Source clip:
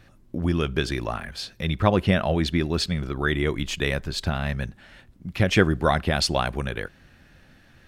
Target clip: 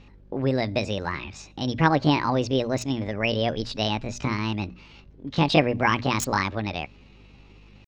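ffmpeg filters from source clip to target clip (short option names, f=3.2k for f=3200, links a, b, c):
-filter_complex "[0:a]asetrate=68011,aresample=44100,atempo=0.64842,acrossover=split=5500[a][b];[b]acrusher=bits=2:mix=0:aa=0.5[c];[a][c]amix=inputs=2:normalize=0,bandreject=f=60:t=h:w=6,bandreject=f=120:t=h:w=6,bandreject=f=180:t=h:w=6,bandreject=f=240:t=h:w=6,aeval=exprs='val(0)+0.00282*(sin(2*PI*50*n/s)+sin(2*PI*2*50*n/s)/2+sin(2*PI*3*50*n/s)/3+sin(2*PI*4*50*n/s)/4+sin(2*PI*5*50*n/s)/5)':c=same"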